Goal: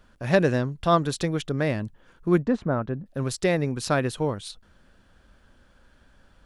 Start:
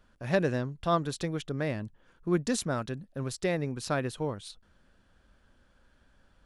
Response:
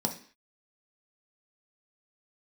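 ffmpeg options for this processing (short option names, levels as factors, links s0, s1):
-filter_complex "[0:a]asettb=1/sr,asplit=3[s0][s1][s2];[s0]atrim=end=2.424[s3];[s1]atrim=start=2.42:end=3.06,asetpts=PTS-STARTPTS,afade=t=in:d=0.004:c=qsin,afade=t=out:st=0.636:d=0.004:c=qsin,lowpass=1300[s4];[s2]atrim=start=3.056[s5];[s3][s4]acrossfade=d=0.004:c1=hsin:c2=qsin[s6];[s6][s5]acrossfade=d=0.004:c1=qsin:c2=hsin,volume=2.11"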